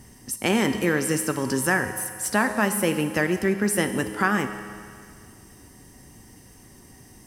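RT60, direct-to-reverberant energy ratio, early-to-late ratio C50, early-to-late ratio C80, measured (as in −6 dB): 2.1 s, 7.5 dB, 9.0 dB, 10.0 dB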